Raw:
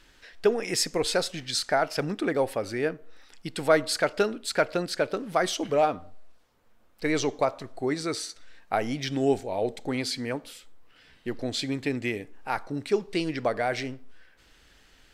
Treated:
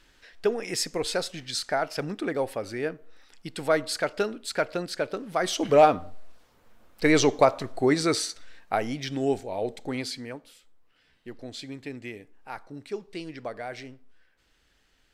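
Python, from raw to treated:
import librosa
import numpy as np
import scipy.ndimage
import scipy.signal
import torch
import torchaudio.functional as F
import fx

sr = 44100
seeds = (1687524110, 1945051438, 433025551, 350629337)

y = fx.gain(x, sr, db=fx.line((5.36, -2.5), (5.76, 6.0), (8.12, 6.0), (9.0, -2.0), (10.0, -2.0), (10.43, -9.0)))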